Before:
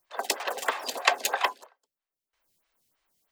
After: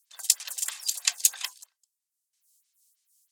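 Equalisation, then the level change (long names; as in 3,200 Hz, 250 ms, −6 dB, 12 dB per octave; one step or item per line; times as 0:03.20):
resonant band-pass 7,700 Hz, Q 1.2
spectral tilt +4.5 dB per octave
−1.5 dB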